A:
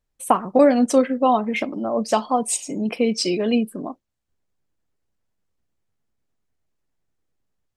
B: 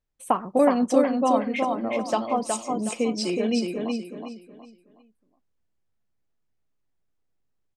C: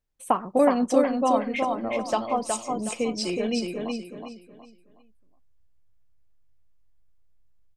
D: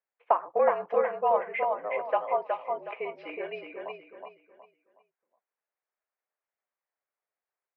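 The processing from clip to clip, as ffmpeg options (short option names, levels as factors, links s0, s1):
-filter_complex "[0:a]highshelf=f=9700:g=-10,asplit=2[s0][s1];[s1]aecho=0:1:368|736|1104|1472:0.631|0.196|0.0606|0.0188[s2];[s0][s2]amix=inputs=2:normalize=0,volume=0.562"
-af "asubboost=boost=7:cutoff=89"
-af "highpass=f=570:t=q:w=0.5412,highpass=f=570:t=q:w=1.307,lowpass=f=2400:t=q:w=0.5176,lowpass=f=2400:t=q:w=0.7071,lowpass=f=2400:t=q:w=1.932,afreqshift=-53"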